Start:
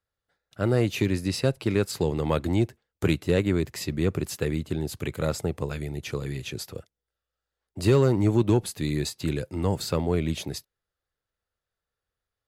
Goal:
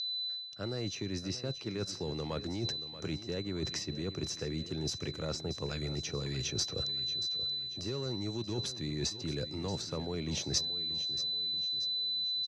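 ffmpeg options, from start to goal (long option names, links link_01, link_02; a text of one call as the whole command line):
ffmpeg -i in.wav -filter_complex "[0:a]acrossover=split=100|2000[link_01][link_02][link_03];[link_01]acompressor=threshold=-41dB:ratio=4[link_04];[link_02]acompressor=threshold=-23dB:ratio=4[link_05];[link_03]acompressor=threshold=-44dB:ratio=4[link_06];[link_04][link_05][link_06]amix=inputs=3:normalize=0,aeval=exprs='val(0)+0.00562*sin(2*PI*4000*n/s)':channel_layout=same,areverse,acompressor=threshold=-41dB:ratio=8,areverse,lowpass=frequency=5800:width_type=q:width=7.7,aecho=1:1:631|1262|1893|2524:0.211|0.0951|0.0428|0.0193,volume=6.5dB" out.wav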